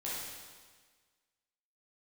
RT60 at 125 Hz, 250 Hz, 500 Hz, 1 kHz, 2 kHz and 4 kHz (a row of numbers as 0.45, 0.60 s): 1.5, 1.5, 1.5, 1.5, 1.5, 1.5 s